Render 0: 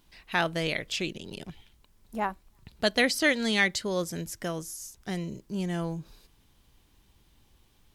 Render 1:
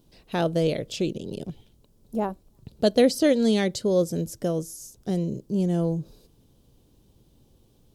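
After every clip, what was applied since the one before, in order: graphic EQ 125/250/500/1000/2000 Hz +8/+5/+10/-4/-11 dB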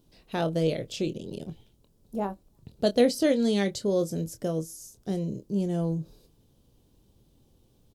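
doubler 25 ms -10 dB; gain -3.5 dB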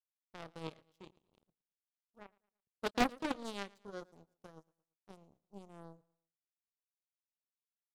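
power-law curve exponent 3; feedback echo 0.113 s, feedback 40%, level -24 dB; Doppler distortion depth 0.83 ms; gain -2 dB

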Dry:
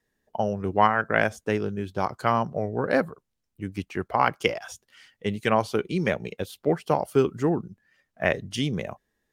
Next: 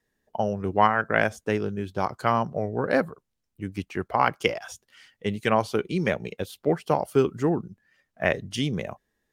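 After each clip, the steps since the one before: nothing audible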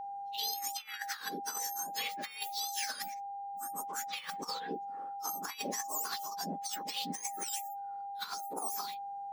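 spectrum mirrored in octaves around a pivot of 1600 Hz; whine 800 Hz -36 dBFS; negative-ratio compressor -31 dBFS, ratio -0.5; gain -5.5 dB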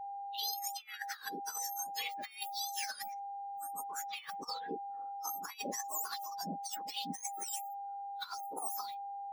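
per-bin expansion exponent 1.5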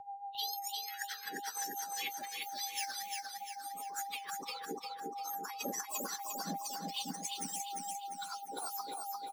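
rotary speaker horn 6.7 Hz; on a send: feedback echo 0.349 s, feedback 48%, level -3.5 dB; on the sum: gain +1.5 dB

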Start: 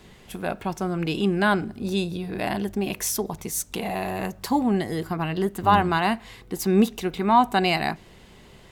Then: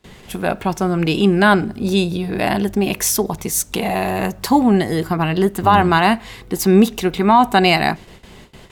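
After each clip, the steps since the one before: gate with hold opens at -39 dBFS; maximiser +10 dB; gain -1.5 dB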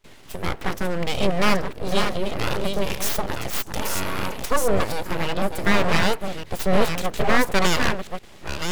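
reverse delay 0.585 s, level -6 dB; full-wave rectifier; gain -4 dB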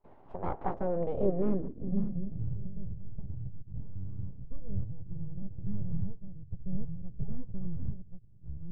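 low-pass sweep 840 Hz -> 120 Hz, 0.65–2.54; gain -9 dB

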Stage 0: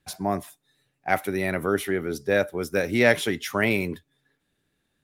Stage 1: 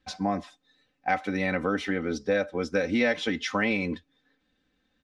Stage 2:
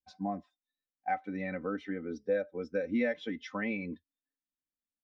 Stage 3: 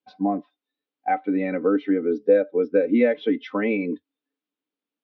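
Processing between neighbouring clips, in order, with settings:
LPF 5800 Hz 24 dB/oct; comb 3.9 ms, depth 79%; compressor 3:1, threshold -23 dBFS, peak gain reduction 9.5 dB
spectral expander 1.5:1; gain -8 dB
speaker cabinet 200–3700 Hz, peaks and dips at 290 Hz +8 dB, 430 Hz +10 dB, 1800 Hz -5 dB; gain +9 dB

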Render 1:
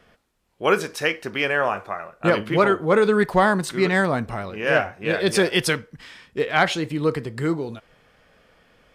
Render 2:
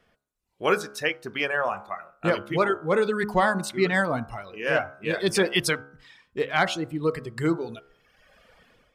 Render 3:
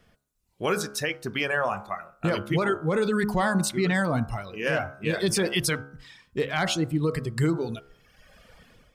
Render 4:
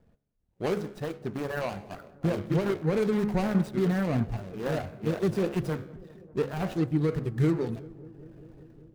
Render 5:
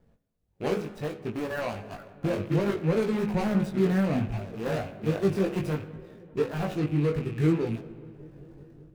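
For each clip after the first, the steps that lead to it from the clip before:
reverb removal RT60 1.3 s; de-hum 69.54 Hz, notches 23; AGC gain up to 13 dB; gain -8.5 dB
tone controls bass +8 dB, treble +6 dB; limiter -16.5 dBFS, peak gain reduction 8.5 dB; gain +1 dB
median filter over 41 samples; darkening echo 0.196 s, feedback 83%, low-pass 1500 Hz, level -21.5 dB
rattling part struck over -36 dBFS, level -38 dBFS; spring tank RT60 2 s, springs 58 ms, chirp 55 ms, DRR 15 dB; chorus 0.64 Hz, delay 17.5 ms, depth 3.4 ms; gain +3.5 dB

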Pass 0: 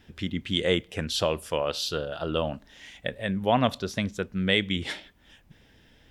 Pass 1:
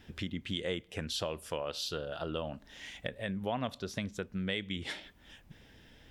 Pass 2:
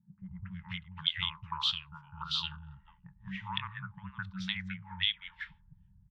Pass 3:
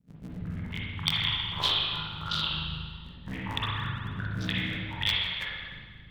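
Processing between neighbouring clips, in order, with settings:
compressor 2.5:1, threshold -37 dBFS, peak gain reduction 13 dB
three bands offset in time mids, lows, highs 0.21/0.51 s, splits 160/1800 Hz; FFT band-reject 200–840 Hz; envelope low-pass 210–3400 Hz up, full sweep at -35.5 dBFS
cycle switcher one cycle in 3, muted; rotary speaker horn 6 Hz; spring tank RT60 1.6 s, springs 38/45/57 ms, chirp 25 ms, DRR -4.5 dB; gain +6 dB

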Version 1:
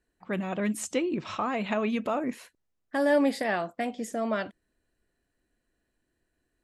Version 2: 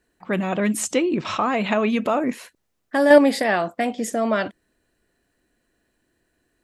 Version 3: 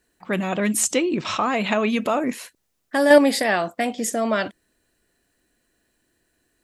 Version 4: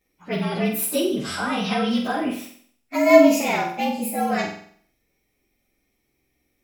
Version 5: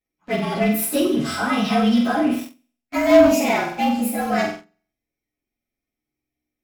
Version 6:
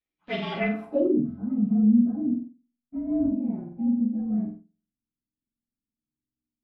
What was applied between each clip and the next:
low shelf 74 Hz -8 dB; in parallel at +0.5 dB: level quantiser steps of 22 dB; on the sum: gain +6.5 dB
high shelf 3300 Hz +7.5 dB; gain -1 dB
inharmonic rescaling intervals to 112%; flutter echo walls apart 7.9 m, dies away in 0.56 s
sample leveller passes 3; on a send at -2 dB: reverb RT60 0.15 s, pre-delay 3 ms; on the sum: gain -10.5 dB
low-pass sweep 3500 Hz -> 220 Hz, 0.5–1.29; gain -8 dB

